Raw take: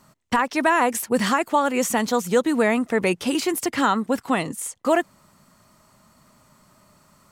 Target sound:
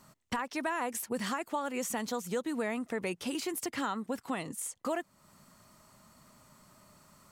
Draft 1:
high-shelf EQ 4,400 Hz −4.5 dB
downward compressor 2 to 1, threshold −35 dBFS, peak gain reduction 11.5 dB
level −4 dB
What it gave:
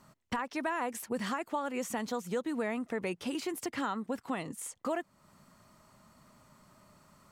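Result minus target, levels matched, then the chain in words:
8,000 Hz band −4.0 dB
high-shelf EQ 4,400 Hz +2.5 dB
downward compressor 2 to 1, threshold −35 dBFS, peak gain reduction 11.5 dB
level −4 dB

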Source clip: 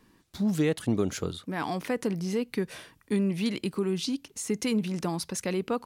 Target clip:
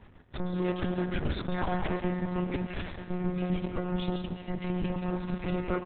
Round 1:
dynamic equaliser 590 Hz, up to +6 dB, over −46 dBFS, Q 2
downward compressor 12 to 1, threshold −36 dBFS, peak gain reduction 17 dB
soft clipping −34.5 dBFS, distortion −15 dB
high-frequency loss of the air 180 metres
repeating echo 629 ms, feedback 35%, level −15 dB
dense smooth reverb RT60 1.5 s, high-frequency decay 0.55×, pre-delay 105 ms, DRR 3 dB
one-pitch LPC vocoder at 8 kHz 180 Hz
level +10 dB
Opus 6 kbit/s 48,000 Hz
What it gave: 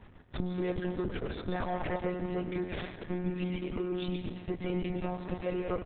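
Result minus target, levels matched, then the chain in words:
downward compressor: peak gain reduction +8 dB; 500 Hz band +2.5 dB
dynamic equaliser 200 Hz, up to +6 dB, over −46 dBFS, Q 2
downward compressor 12 to 1, threshold −25.5 dBFS, peak gain reduction 9 dB
soft clipping −34.5 dBFS, distortion −8 dB
high-frequency loss of the air 180 metres
repeating echo 629 ms, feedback 35%, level −15 dB
dense smooth reverb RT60 1.5 s, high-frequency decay 0.55×, pre-delay 105 ms, DRR 3 dB
one-pitch LPC vocoder at 8 kHz 180 Hz
level +10 dB
Opus 6 kbit/s 48,000 Hz

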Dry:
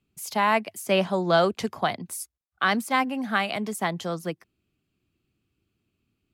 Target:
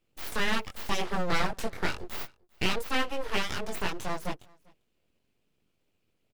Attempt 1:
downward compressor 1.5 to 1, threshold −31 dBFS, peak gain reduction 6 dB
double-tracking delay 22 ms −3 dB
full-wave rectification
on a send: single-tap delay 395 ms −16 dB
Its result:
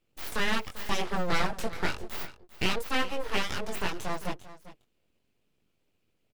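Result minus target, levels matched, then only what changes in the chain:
echo-to-direct +11.5 dB
change: single-tap delay 395 ms −27.5 dB

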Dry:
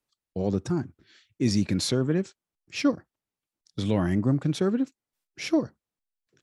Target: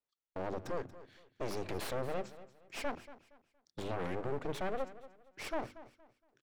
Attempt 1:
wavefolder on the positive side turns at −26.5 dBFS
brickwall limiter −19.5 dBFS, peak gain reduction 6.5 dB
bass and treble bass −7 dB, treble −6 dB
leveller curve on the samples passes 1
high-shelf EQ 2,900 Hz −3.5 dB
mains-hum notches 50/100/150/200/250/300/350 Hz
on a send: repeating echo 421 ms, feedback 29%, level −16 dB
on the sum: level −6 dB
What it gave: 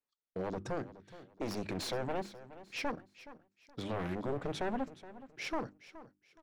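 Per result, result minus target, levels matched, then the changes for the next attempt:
echo 188 ms late; wavefolder on the positive side: distortion −15 dB
change: repeating echo 233 ms, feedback 29%, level −16 dB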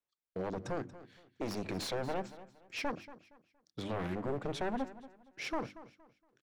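wavefolder on the positive side: distortion −15 dB
change: wavefolder on the positive side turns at −38 dBFS

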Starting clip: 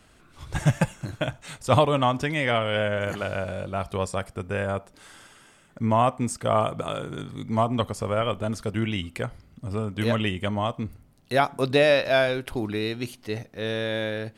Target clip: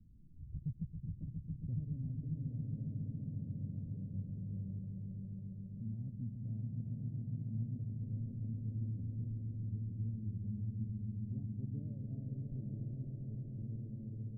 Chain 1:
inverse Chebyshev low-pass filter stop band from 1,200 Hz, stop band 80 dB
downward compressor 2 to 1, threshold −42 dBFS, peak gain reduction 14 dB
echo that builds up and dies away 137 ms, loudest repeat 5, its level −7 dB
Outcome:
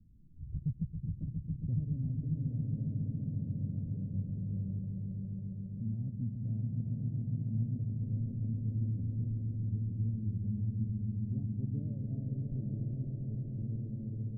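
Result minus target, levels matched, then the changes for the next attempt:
downward compressor: peak gain reduction −5.5 dB
change: downward compressor 2 to 1, threshold −53.5 dBFS, peak gain reduction 20 dB

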